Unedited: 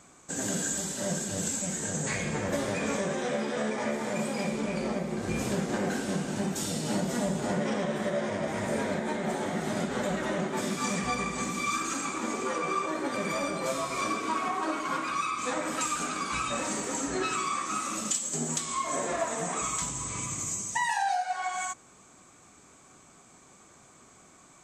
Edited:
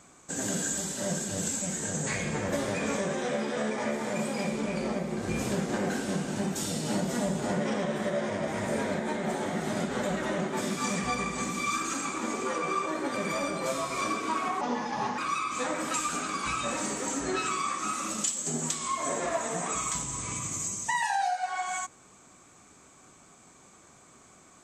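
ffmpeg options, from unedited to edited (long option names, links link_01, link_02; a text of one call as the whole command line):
ffmpeg -i in.wav -filter_complex "[0:a]asplit=3[link_01][link_02][link_03];[link_01]atrim=end=14.614[link_04];[link_02]atrim=start=14.61:end=15.05,asetpts=PTS-STARTPTS,asetrate=33957,aresample=44100[link_05];[link_03]atrim=start=15.046[link_06];[link_04][link_05]acrossfade=duration=0.004:curve1=hsin:curve2=hsin[link_07];[link_07][link_06]acrossfade=duration=0.004:curve1=hsin:curve2=hsin" out.wav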